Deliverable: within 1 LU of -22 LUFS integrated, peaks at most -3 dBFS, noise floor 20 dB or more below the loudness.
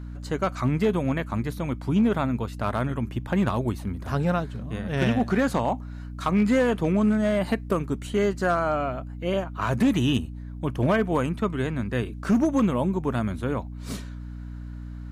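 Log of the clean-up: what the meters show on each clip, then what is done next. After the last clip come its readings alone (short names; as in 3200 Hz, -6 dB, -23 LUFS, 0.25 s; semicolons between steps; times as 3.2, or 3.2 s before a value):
clipped 0.8%; flat tops at -15.0 dBFS; hum 60 Hz; harmonics up to 300 Hz; hum level -34 dBFS; loudness -25.5 LUFS; peak -15.0 dBFS; loudness target -22.0 LUFS
-> clip repair -15 dBFS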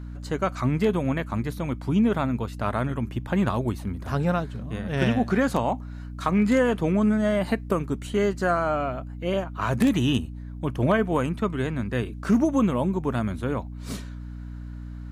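clipped 0.0%; hum 60 Hz; harmonics up to 300 Hz; hum level -34 dBFS
-> de-hum 60 Hz, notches 5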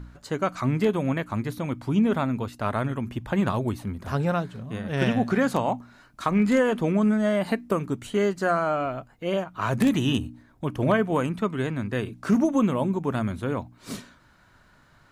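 hum none; loudness -25.5 LUFS; peak -7.0 dBFS; loudness target -22.0 LUFS
-> gain +3.5 dB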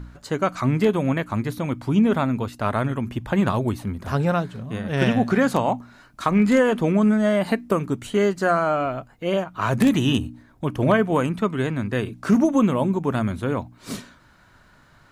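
loudness -22.0 LUFS; peak -3.5 dBFS; noise floor -54 dBFS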